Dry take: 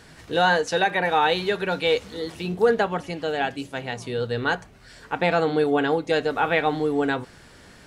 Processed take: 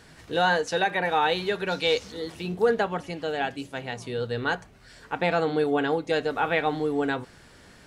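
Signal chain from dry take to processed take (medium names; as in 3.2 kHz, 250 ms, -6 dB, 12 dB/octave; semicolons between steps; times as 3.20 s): 1.67–2.12 s: peaking EQ 5.6 kHz +10.5 dB 0.91 oct; trim -3 dB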